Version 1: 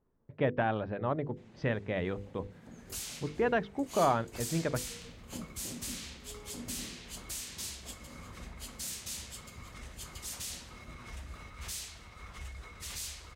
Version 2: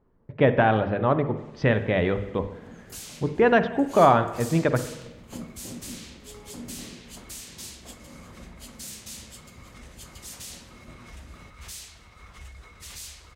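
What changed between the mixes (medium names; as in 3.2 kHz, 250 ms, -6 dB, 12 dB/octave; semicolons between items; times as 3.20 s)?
speech +9.5 dB; first sound +4.0 dB; reverb: on, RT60 1.0 s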